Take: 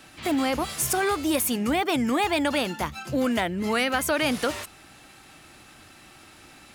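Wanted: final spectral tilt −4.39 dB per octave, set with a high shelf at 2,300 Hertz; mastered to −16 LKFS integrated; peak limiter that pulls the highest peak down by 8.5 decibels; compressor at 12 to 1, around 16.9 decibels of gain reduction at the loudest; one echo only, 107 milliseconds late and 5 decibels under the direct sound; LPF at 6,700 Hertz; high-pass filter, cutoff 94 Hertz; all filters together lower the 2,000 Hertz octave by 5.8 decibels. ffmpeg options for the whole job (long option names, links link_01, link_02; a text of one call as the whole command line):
ffmpeg -i in.wav -af "highpass=94,lowpass=6700,equalizer=frequency=2000:width_type=o:gain=-6,highshelf=frequency=2300:gain=-3,acompressor=threshold=-39dB:ratio=12,alimiter=level_in=13dB:limit=-24dB:level=0:latency=1,volume=-13dB,aecho=1:1:107:0.562,volume=29dB" out.wav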